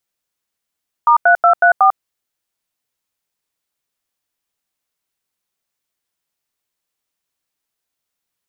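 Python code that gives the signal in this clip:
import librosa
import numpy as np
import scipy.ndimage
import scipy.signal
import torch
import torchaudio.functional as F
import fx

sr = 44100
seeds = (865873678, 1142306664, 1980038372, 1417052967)

y = fx.dtmf(sr, digits='*3234', tone_ms=97, gap_ms=87, level_db=-9.5)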